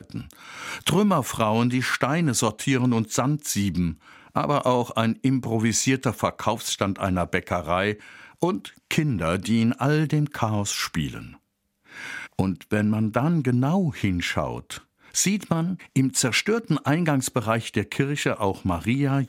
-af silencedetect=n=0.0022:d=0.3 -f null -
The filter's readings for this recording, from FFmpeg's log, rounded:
silence_start: 11.43
silence_end: 11.85 | silence_duration: 0.42